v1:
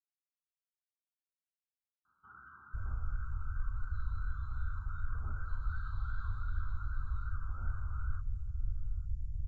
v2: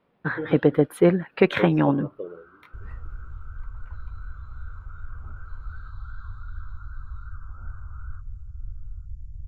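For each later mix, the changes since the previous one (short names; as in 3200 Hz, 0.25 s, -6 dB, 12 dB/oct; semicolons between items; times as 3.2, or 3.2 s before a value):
speech: unmuted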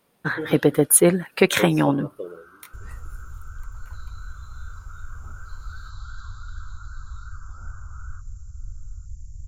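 first sound: remove air absorption 150 m; master: remove air absorption 390 m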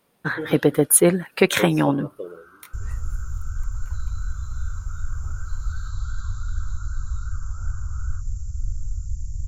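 second sound +9.0 dB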